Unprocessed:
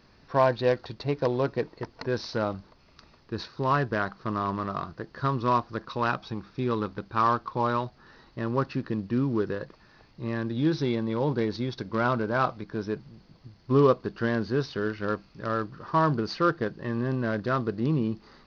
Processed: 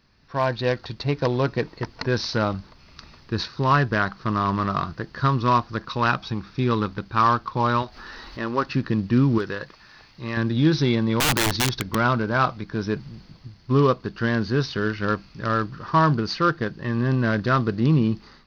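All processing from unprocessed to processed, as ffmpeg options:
-filter_complex "[0:a]asettb=1/sr,asplit=3[s0][s1][s2];[s0]atrim=end=7.824[s3];[s1]atrim=start=7.82:end=8.69,asetpts=PTS-STARTPTS,afade=t=in:d=0.004:c=qsin,afade=t=out:st=0.866:d=0.004:c=qsin,equalizer=f=130:t=o:w=1.1:g=-15,acompressor=mode=upward:threshold=0.0126:ratio=2.5:attack=3.2:release=140:knee=2.83:detection=peak[s4];[s2]atrim=start=8.686[s5];[s3][s4]acrossfade=d=0.004:c1=hsin:c2=qsin[s6];[s6][s5]acrossfade=d=0.004:c1=qsin:c2=hsin,asettb=1/sr,asplit=3[s7][s8][s9];[s7]atrim=end=9.384[s10];[s8]atrim=start=9.38:end=10.37,asetpts=PTS-STARTPTS,afade=t=in:d=0.004:c=qsin,afade=t=out:st=0.986:d=0.004:c=qsin,lowshelf=f=440:g=-10,asoftclip=type=hard:threshold=0.0794[s11];[s9]atrim=start=10.366[s12];[s10][s11]acrossfade=d=0.004:c1=hsin:c2=qsin[s13];[s13][s12]acrossfade=d=0.004:c1=qsin:c2=hsin,asettb=1/sr,asplit=3[s14][s15][s16];[s14]atrim=end=11.204[s17];[s15]atrim=start=11.2:end=11.95,asetpts=PTS-STARTPTS,afade=t=in:d=0.004:c=qsin,afade=t=out:st=0.746:d=0.004:c=qsin,asubboost=boost=5.5:cutoff=100,aeval=exprs='(mod(15*val(0)+1,2)-1)/15':c=same,bandreject=f=540:w=16[s18];[s16]atrim=start=11.946[s19];[s17][s18]acrossfade=d=0.004:c1=hsin:c2=qsin[s20];[s20][s19]acrossfade=d=0.004:c1=qsin:c2=hsin,dynaudnorm=f=160:g=5:m=5.01,equalizer=f=510:t=o:w=2.2:g=-7,volume=0.794"

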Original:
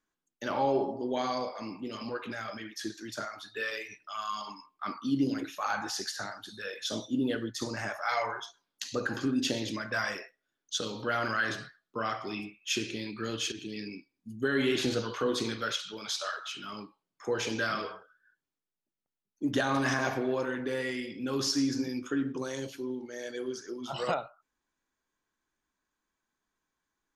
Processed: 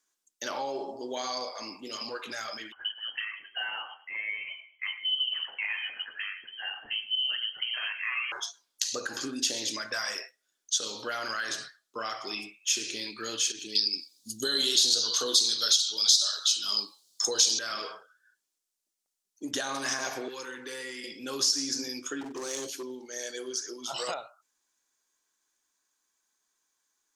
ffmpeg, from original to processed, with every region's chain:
-filter_complex "[0:a]asettb=1/sr,asplit=3[s0][s1][s2];[s0]atrim=end=2.724[s3];[s1]atrim=start=2.72:end=8.32,asetpts=PTS-STARTPTS,afade=t=in:d=0.004:c=qsin,afade=t=out:st=5.596:d=0.004:c=qsin,aecho=1:1:108|216|324:0.126|0.0466|0.0172,atrim=end_sample=246960,lowpass=f=2800:t=q:w=0.5098,lowpass=f=2800:t=q:w=0.6013,lowpass=f=2800:t=q:w=0.9,lowpass=f=2800:t=q:w=2.563,afreqshift=-3300[s4];[s2]atrim=start=8.316[s5];[s3][s4]acrossfade=d=0.004:c1=hsin:c2=qsin[s6];[s6][s5]acrossfade=d=0.004:c1=qsin:c2=hsin,asettb=1/sr,asplit=3[s7][s8][s9];[s7]atrim=end=13.754[s10];[s8]atrim=start=13.75:end=17.59,asetpts=PTS-STARTPTS,afade=t=in:d=0.004:c=qsin,afade=t=out:st=3.836:d=0.004:c=qsin,highshelf=f=3000:t=q:w=3:g=10,acontrast=28[s11];[s9]atrim=start=17.586[s12];[s10][s11]acrossfade=d=0.004:c1=hsin:c2=qsin[s13];[s13][s12]acrossfade=d=0.004:c1=qsin:c2=hsin,asettb=1/sr,asplit=3[s14][s15][s16];[s14]atrim=end=20.284[s17];[s15]atrim=start=20.28:end=21.04,asetpts=PTS-STARTPTS,afade=t=in:d=0.004:c=qsin,afade=t=out:st=0.756:d=0.004:c=qsin,acrossover=split=690|1500[s18][s19][s20];[s18]acompressor=threshold=0.0112:ratio=4[s21];[s19]acompressor=threshold=0.00447:ratio=4[s22];[s20]acompressor=threshold=0.00501:ratio=4[s23];[s21][s22][s23]amix=inputs=3:normalize=0,asuperstop=centerf=650:order=4:qfactor=2.4[s24];[s16]atrim=start=21.036[s25];[s17][s24]acrossfade=d=0.004:c1=hsin:c2=qsin[s26];[s26][s25]acrossfade=d=0.004:c1=qsin:c2=hsin,asettb=1/sr,asplit=3[s27][s28][s29];[s27]atrim=end=22.214[s30];[s28]atrim=start=22.21:end=22.83,asetpts=PTS-STARTPTS,afade=t=in:d=0.004:c=qsin,afade=t=out:st=0.616:d=0.004:c=qsin,equalizer=f=350:t=o:w=0.7:g=7,asoftclip=type=hard:threshold=0.0282[s31];[s29]atrim=start=22.826[s32];[s30][s31]acrossfade=d=0.004:c1=hsin:c2=qsin[s33];[s33][s32]acrossfade=d=0.004:c1=qsin:c2=hsin,bass=f=250:g=-14,treble=f=4000:g=6,acompressor=threshold=0.0251:ratio=3,equalizer=f=7000:w=0.59:g=9"

